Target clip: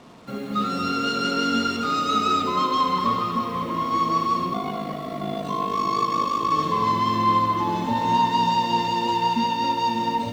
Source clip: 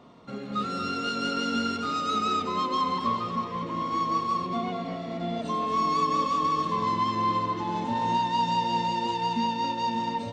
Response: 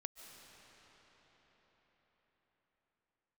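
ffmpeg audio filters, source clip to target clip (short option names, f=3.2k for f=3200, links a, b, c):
-filter_complex "[0:a]asettb=1/sr,asplit=3[a][b][c];[a]atrim=end=4.504[d];[b]atrim=start=4.5:end=6.51,asetpts=PTS-STARTPTS,afade=t=in:d=0.004:c=qsin,afade=t=out:st=2.006:d=0.004:c=qsin,aeval=exprs='val(0)*sin(2*PI*26*n/s)':c=same[e];[c]atrim=start=6.506[f];[d][e]acrossfade=d=0.004:c1=hsin:c2=qsin[g];[g][f]acrossfade=d=0.004:c1=qsin:c2=hsin,acrusher=bits=8:mix=0:aa=0.5,asplit=2[h][i];[1:a]atrim=start_sample=2205,adelay=72[j];[i][j]afir=irnorm=-1:irlink=0,volume=-3.5dB[k];[h][k]amix=inputs=2:normalize=0,volume=4.5dB"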